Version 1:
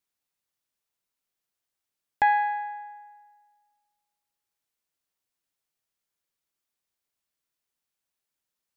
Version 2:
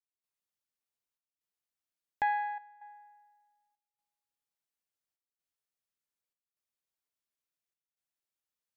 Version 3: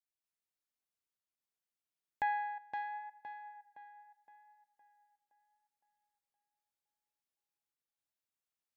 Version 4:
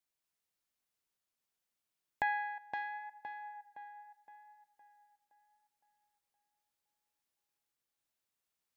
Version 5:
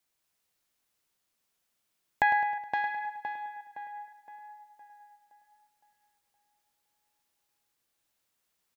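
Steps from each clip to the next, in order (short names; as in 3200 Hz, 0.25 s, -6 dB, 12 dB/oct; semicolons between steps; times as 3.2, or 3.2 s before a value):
step gate ".xxxx.xxxxx" 64 bpm -12 dB; gain -8.5 dB
tape echo 0.515 s, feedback 47%, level -4 dB, low-pass 2800 Hz; gain -4 dB
dynamic EQ 830 Hz, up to -6 dB, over -49 dBFS, Q 6.1; gain +4.5 dB
feedback echo 0.105 s, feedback 53%, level -11 dB; gain +8.5 dB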